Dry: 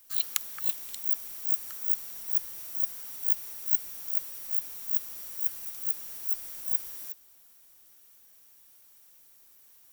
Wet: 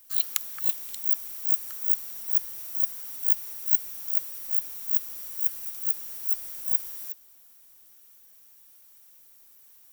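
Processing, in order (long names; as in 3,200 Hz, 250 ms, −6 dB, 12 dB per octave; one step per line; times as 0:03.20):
high-shelf EQ 11,000 Hz +3.5 dB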